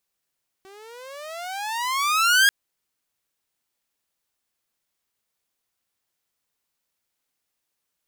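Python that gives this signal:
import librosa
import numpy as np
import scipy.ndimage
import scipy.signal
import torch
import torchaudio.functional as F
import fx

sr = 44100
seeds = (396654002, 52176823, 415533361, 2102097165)

y = fx.riser_tone(sr, length_s=1.84, level_db=-10.0, wave='saw', hz=379.0, rise_st=25.5, swell_db=32.0)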